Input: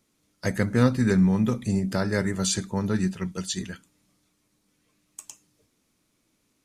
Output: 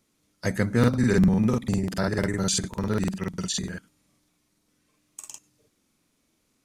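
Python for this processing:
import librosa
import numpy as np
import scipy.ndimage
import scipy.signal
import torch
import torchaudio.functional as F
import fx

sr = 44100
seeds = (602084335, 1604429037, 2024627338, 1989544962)

y = fx.buffer_crackle(x, sr, first_s=0.79, period_s=0.1, block=2048, kind='repeat')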